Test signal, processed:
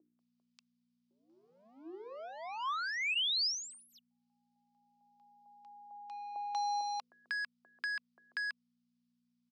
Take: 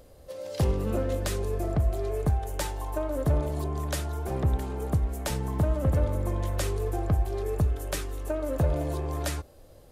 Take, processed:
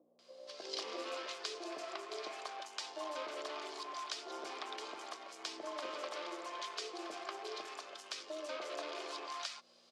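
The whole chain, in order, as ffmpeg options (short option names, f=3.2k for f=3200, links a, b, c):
-filter_complex "[0:a]asplit=2[a][b];[b]acrusher=bits=4:mix=0:aa=0.5,volume=-8dB[c];[a][c]amix=inputs=2:normalize=0,aderivative,bandreject=f=2.7k:w=15,acompressor=threshold=-40dB:ratio=10,asoftclip=type=tanh:threshold=-27.5dB,aeval=exprs='val(0)+0.000794*(sin(2*PI*60*n/s)+sin(2*PI*2*60*n/s)/2+sin(2*PI*3*60*n/s)/3+sin(2*PI*4*60*n/s)/4+sin(2*PI*5*60*n/s)/5)':c=same,highpass=f=330:w=0.5412,highpass=f=330:w=1.3066,equalizer=f=340:t=q:w=4:g=9,equalizer=f=680:t=q:w=4:g=5,equalizer=f=1.1k:t=q:w=4:g=7,equalizer=f=1.8k:t=q:w=4:g=-3,equalizer=f=2.7k:t=q:w=4:g=5,equalizer=f=4.9k:t=q:w=4:g=4,lowpass=f=5.1k:w=0.5412,lowpass=f=5.1k:w=1.3066,bandreject=f=50:t=h:w=6,bandreject=f=100:t=h:w=6,bandreject=f=150:t=h:w=6,bandreject=f=200:t=h:w=6,bandreject=f=250:t=h:w=6,bandreject=f=300:t=h:w=6,bandreject=f=350:t=h:w=6,bandreject=f=400:t=h:w=6,bandreject=f=450:t=h:w=6,bandreject=f=500:t=h:w=6,acrossover=split=680[d][e];[e]adelay=190[f];[d][f]amix=inputs=2:normalize=0,volume=7.5dB"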